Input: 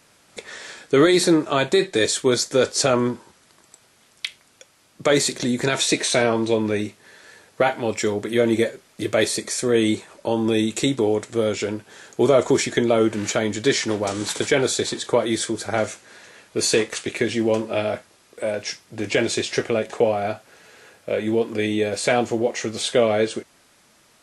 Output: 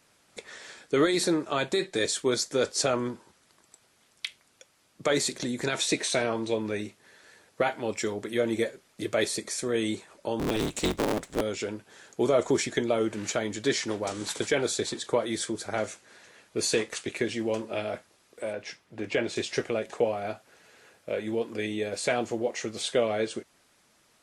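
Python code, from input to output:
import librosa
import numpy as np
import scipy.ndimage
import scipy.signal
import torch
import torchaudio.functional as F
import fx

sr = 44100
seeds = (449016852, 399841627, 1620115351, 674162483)

y = fx.cycle_switch(x, sr, every=3, mode='inverted', at=(10.39, 11.41))
y = fx.hpss(y, sr, part='harmonic', gain_db=-4)
y = fx.bass_treble(y, sr, bass_db=-1, treble_db=-10, at=(18.53, 19.36))
y = y * 10.0 ** (-6.0 / 20.0)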